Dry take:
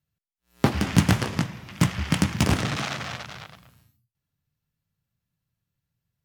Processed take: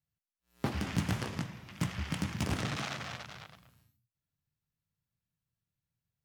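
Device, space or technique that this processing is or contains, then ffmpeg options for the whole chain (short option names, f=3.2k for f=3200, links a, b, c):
clipper into limiter: -af "asoftclip=type=hard:threshold=-6.5dB,alimiter=limit=-12dB:level=0:latency=1:release=71,volume=-8dB"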